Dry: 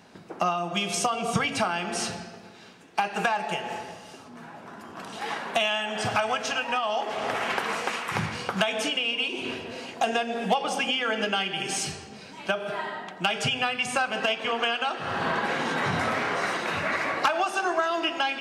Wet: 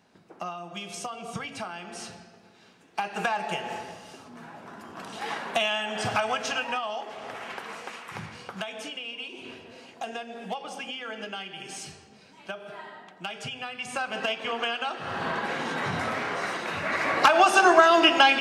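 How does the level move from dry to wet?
0:02.29 −10 dB
0:03.43 −1 dB
0:06.63 −1 dB
0:07.20 −10 dB
0:13.66 −10 dB
0:14.14 −3 dB
0:16.79 −3 dB
0:17.48 +8.5 dB

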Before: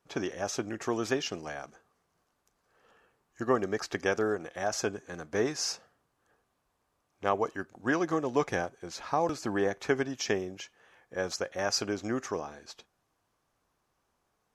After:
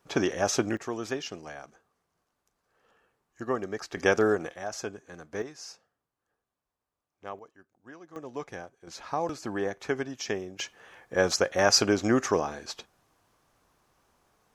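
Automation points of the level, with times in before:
+7 dB
from 0:00.77 −3 dB
from 0:03.97 +5.5 dB
from 0:04.54 −4.5 dB
from 0:05.42 −11.5 dB
from 0:07.39 −20 dB
from 0:08.16 −9.5 dB
from 0:08.87 −2 dB
from 0:10.59 +8.5 dB

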